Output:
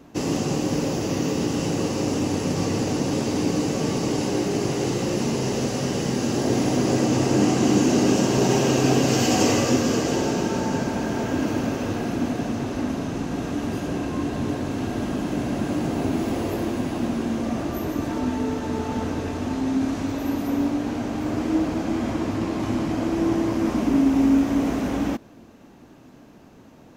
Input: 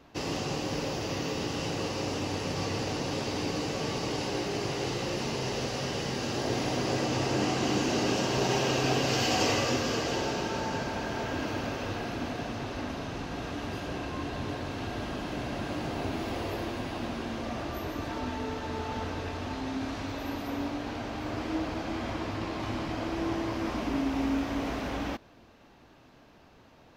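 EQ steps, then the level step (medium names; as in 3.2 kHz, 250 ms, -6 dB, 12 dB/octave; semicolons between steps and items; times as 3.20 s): peaking EQ 230 Hz +10 dB 1.9 oct; resonant high shelf 5.7 kHz +6.5 dB, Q 1.5; +2.5 dB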